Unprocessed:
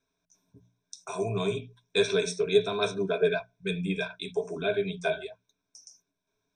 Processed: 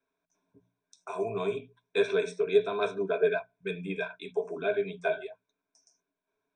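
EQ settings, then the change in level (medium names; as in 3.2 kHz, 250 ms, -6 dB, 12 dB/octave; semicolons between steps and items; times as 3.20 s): three-band isolator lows -13 dB, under 240 Hz, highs -21 dB, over 2.8 kHz; peaking EQ 7.8 kHz +10 dB 0.53 oct; 0.0 dB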